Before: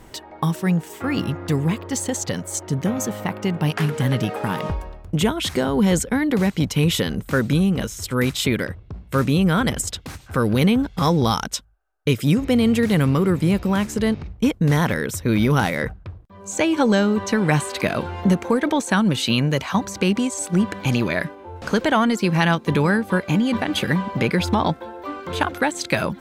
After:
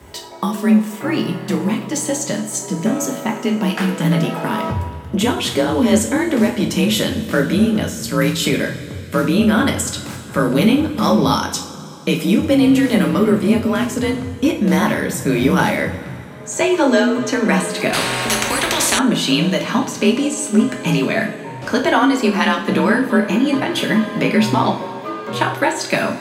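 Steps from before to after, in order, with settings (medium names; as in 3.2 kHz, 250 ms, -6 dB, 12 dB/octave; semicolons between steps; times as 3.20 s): two-slope reverb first 0.4 s, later 3.4 s, from -18 dB, DRR 1 dB; frequency shift +38 Hz; 17.93–18.99 s: spectrum-flattening compressor 4:1; trim +1.5 dB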